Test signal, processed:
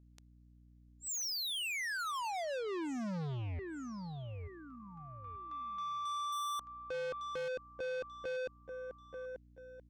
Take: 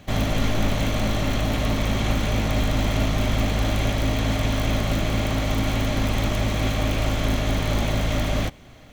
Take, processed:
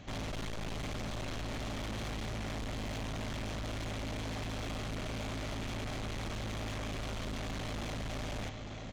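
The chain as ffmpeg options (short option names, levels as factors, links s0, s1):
-af "aresample=16000,asoftclip=type=hard:threshold=0.0794,aresample=44100,aeval=exprs='val(0)+0.00158*(sin(2*PI*60*n/s)+sin(2*PI*2*60*n/s)/2+sin(2*PI*3*60*n/s)/3+sin(2*PI*4*60*n/s)/4+sin(2*PI*5*60*n/s)/5)':c=same,aecho=1:1:887|1774|2661:0.211|0.0719|0.0244,asoftclip=type=tanh:threshold=0.0224,volume=0.631"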